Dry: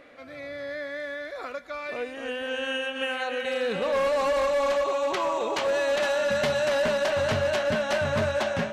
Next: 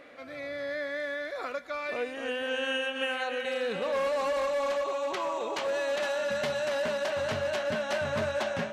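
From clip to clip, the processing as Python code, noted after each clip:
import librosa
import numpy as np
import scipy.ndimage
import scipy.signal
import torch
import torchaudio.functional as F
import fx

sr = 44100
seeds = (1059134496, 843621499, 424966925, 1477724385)

y = fx.low_shelf(x, sr, hz=92.0, db=-9.0)
y = fx.rider(y, sr, range_db=4, speed_s=2.0)
y = y * 10.0 ** (-3.5 / 20.0)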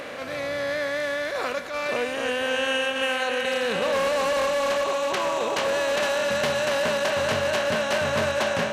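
y = fx.bin_compress(x, sr, power=0.6)
y = fx.high_shelf(y, sr, hz=6800.0, db=8.0)
y = fx.attack_slew(y, sr, db_per_s=100.0)
y = y * 10.0 ** (3.0 / 20.0)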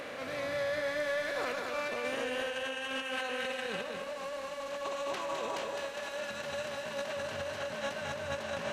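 y = fx.over_compress(x, sr, threshold_db=-27.0, ratio=-0.5)
y = 10.0 ** (-17.5 / 20.0) * np.tanh(y / 10.0 ** (-17.5 / 20.0))
y = y + 10.0 ** (-4.5 / 20.0) * np.pad(y, (int(209 * sr / 1000.0), 0))[:len(y)]
y = y * 10.0 ** (-9.0 / 20.0)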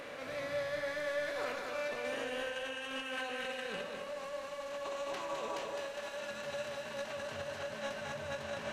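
y = fx.room_shoebox(x, sr, seeds[0], volume_m3=63.0, walls='mixed', distance_m=0.31)
y = y * 10.0 ** (-4.5 / 20.0)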